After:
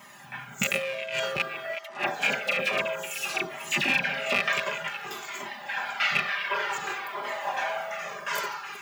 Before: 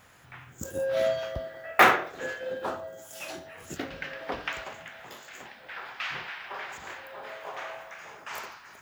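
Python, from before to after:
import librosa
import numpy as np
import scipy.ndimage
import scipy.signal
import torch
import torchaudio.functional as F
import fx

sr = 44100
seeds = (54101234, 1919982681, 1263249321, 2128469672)

y = fx.rattle_buzz(x, sr, strikes_db=-46.0, level_db=-17.0)
y = fx.dispersion(y, sr, late='lows', ms=62.0, hz=1500.0, at=(1.83, 4.32))
y = fx.over_compress(y, sr, threshold_db=-31.0, ratio=-0.5)
y = scipy.signal.sosfilt(scipy.signal.butter(4, 120.0, 'highpass', fs=sr, output='sos'), y)
y = y + 0.79 * np.pad(y, (int(5.0 * sr / 1000.0), 0))[:len(y)]
y = fx.echo_stepped(y, sr, ms=184, hz=980.0, octaves=1.4, feedback_pct=70, wet_db=-6)
y = fx.comb_cascade(y, sr, direction='falling', hz=0.55)
y = F.gain(torch.from_numpy(y), 7.0).numpy()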